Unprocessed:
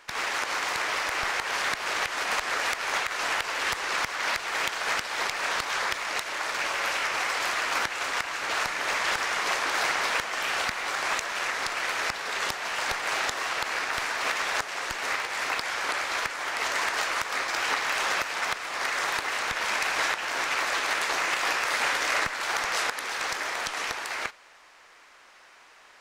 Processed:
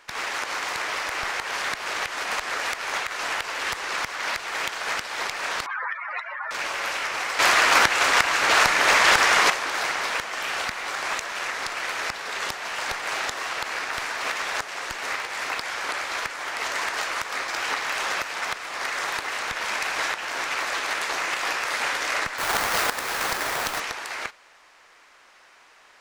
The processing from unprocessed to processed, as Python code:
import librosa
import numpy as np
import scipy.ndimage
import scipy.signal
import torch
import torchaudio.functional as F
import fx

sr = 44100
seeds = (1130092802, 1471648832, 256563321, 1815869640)

y = fx.spec_expand(x, sr, power=3.9, at=(5.66, 6.51))
y = fx.halfwave_hold(y, sr, at=(22.38, 23.8))
y = fx.edit(y, sr, fx.clip_gain(start_s=7.39, length_s=2.11, db=10.0), tone=tone)